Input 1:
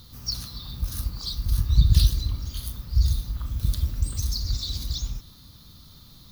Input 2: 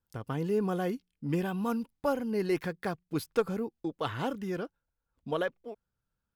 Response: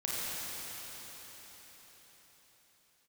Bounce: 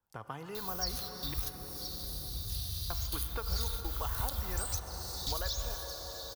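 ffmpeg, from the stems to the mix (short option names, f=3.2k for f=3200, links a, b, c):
-filter_complex "[0:a]crystalizer=i=5:c=0,adelay=550,volume=-4.5dB,asplit=3[a][b][c];[b]volume=-20dB[d];[c]volume=-21.5dB[e];[1:a]equalizer=f=860:t=o:w=1.5:g=11,volume=-5.5dB,asplit=3[f][g][h];[f]atrim=end=1.34,asetpts=PTS-STARTPTS,afade=t=out:st=1.336:d=0.004:c=hsin[i];[g]atrim=start=1.34:end=2.9,asetpts=PTS-STARTPTS,volume=0[j];[h]atrim=start=2.9,asetpts=PTS-STARTPTS,afade=t=in:d=0.004:c=hsin[k];[i][j][k]concat=n=3:v=0:a=1,asplit=3[l][m][n];[m]volume=-13dB[o];[n]apad=whole_len=302806[p];[a][p]sidechaingate=range=-33dB:threshold=-52dB:ratio=16:detection=peak[q];[2:a]atrim=start_sample=2205[r];[d][o]amix=inputs=2:normalize=0[s];[s][r]afir=irnorm=-1:irlink=0[t];[e]aecho=0:1:1017:1[u];[q][l][t][u]amix=inputs=4:normalize=0,acrossover=split=88|940|3000[v][w][x][y];[v]acompressor=threshold=-35dB:ratio=4[z];[w]acompressor=threshold=-47dB:ratio=4[aa];[x]acompressor=threshold=-42dB:ratio=4[ab];[y]acompressor=threshold=-39dB:ratio=4[ac];[z][aa][ab][ac]amix=inputs=4:normalize=0"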